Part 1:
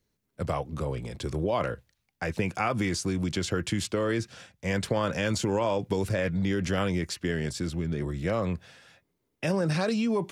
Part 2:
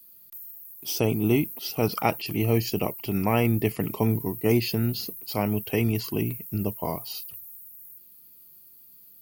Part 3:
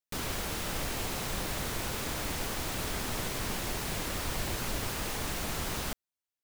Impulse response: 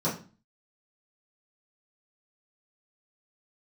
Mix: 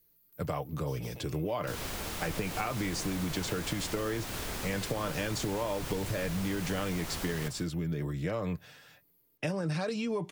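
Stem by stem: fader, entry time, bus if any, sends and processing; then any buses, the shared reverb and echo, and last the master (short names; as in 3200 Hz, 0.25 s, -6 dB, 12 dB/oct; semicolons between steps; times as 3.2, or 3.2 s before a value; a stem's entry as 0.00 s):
-2.0 dB, 0.00 s, no send, no echo send, comb 6.7 ms, depth 39%
-16.0 dB, 0.00 s, no send, echo send -3.5 dB, HPF 610 Hz; one-sided clip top -30 dBFS; auto duck -9 dB, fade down 1.95 s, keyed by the first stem
-3.0 dB, 1.55 s, no send, echo send -12 dB, dry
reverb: off
echo: echo 0.157 s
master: compressor, threshold -29 dBFS, peak gain reduction 6.5 dB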